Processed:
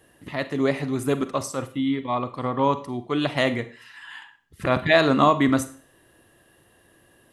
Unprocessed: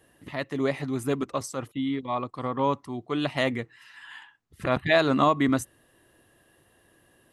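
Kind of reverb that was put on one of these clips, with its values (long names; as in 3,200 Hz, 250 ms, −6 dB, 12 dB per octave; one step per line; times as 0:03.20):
four-comb reverb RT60 0.43 s, combs from 33 ms, DRR 11.5 dB
level +3.5 dB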